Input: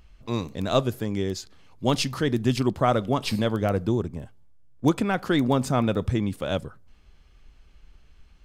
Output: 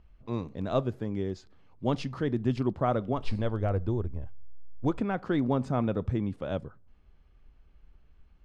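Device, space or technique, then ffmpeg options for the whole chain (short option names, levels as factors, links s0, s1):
through cloth: -filter_complex "[0:a]lowpass=7000,highshelf=f=2600:g=-15,asplit=3[s0][s1][s2];[s0]afade=t=out:st=3.12:d=0.02[s3];[s1]asubboost=boost=11:cutoff=56,afade=t=in:st=3.12:d=0.02,afade=t=out:st=4.98:d=0.02[s4];[s2]afade=t=in:st=4.98:d=0.02[s5];[s3][s4][s5]amix=inputs=3:normalize=0,volume=0.596"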